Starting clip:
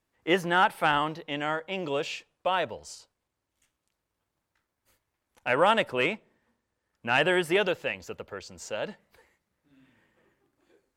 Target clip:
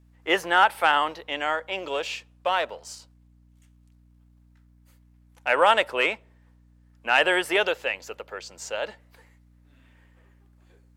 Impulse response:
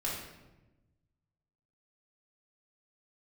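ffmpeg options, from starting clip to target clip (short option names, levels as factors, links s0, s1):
-filter_complex "[0:a]asettb=1/sr,asplit=3[s0][s1][s2];[s0]atrim=end=1.794[s3];[s1]atrim=start=1.79:end=5.48,asetpts=PTS-STARTPTS,afade=t=in:d=0.004:c=qsin,afade=t=out:st=3.686:d=0.004:c=qsin,aeval=exprs='if(lt(val(0),0),0.708*val(0),val(0))':c=same[s4];[s2]atrim=start=5.476[s5];[s3][s4]acrossfade=d=0.004:c1=hsin:c2=qsin[s6];[s6][s5]acrossfade=d=0.004:c1=qsin:c2=hsin,highpass=480,aeval=exprs='val(0)+0.001*(sin(2*PI*60*n/s)+sin(2*PI*2*60*n/s)/2+sin(2*PI*3*60*n/s)/3+sin(2*PI*4*60*n/s)/4+sin(2*PI*5*60*n/s)/5)':c=same,volume=1.68"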